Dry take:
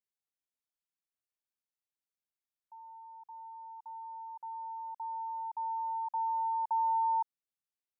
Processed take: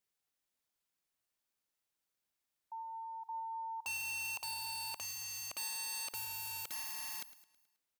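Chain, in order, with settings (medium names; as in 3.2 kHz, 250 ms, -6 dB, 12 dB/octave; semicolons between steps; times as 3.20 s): integer overflow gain 42.5 dB; feedback delay 107 ms, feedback 51%, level -16 dB; trim +6.5 dB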